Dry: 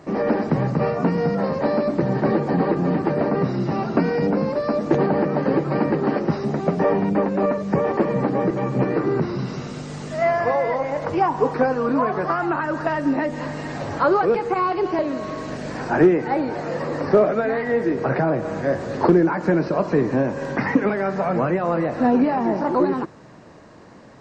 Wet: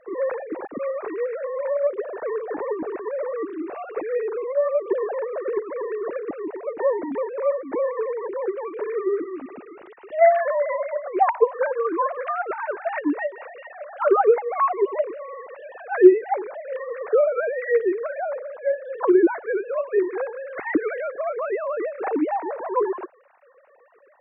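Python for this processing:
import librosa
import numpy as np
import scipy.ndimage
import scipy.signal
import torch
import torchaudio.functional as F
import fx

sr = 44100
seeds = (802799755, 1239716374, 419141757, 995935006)

y = fx.sine_speech(x, sr)
y = fx.air_absorb(y, sr, metres=300.0, at=(18.07, 18.66))
y = F.gain(torch.from_numpy(y), -3.0).numpy()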